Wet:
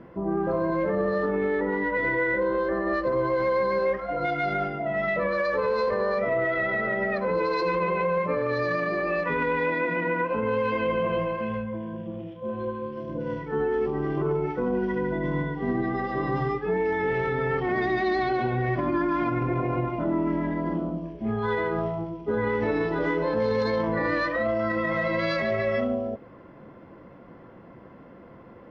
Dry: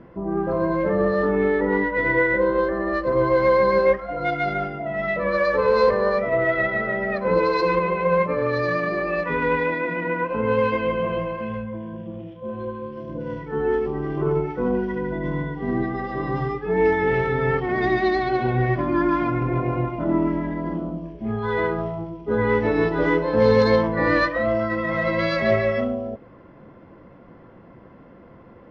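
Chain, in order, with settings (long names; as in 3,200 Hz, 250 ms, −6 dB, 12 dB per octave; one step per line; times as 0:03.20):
low-shelf EQ 91 Hz −6 dB
brickwall limiter −17.5 dBFS, peak gain reduction 10 dB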